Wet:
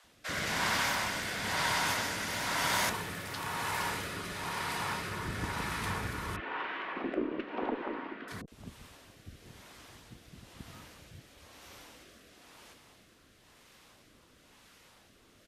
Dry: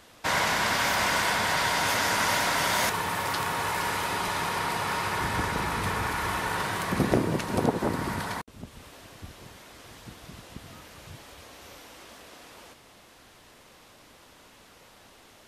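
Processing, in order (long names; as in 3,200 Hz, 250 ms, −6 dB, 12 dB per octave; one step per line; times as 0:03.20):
0:06.36–0:08.28: elliptic band-pass filter 280–2,900 Hz, stop band 50 dB
harmonic generator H 8 −35 dB, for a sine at −7.5 dBFS
multiband delay without the direct sound highs, lows 40 ms, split 540 Hz
rotating-speaker cabinet horn 1 Hz
level −3.5 dB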